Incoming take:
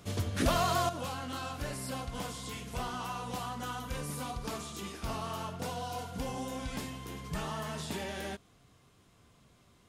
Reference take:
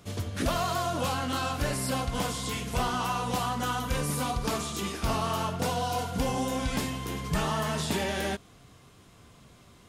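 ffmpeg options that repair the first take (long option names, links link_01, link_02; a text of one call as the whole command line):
ffmpeg -i in.wav -af "asetnsamples=nb_out_samples=441:pad=0,asendcmd='0.89 volume volume 8.5dB',volume=0dB" out.wav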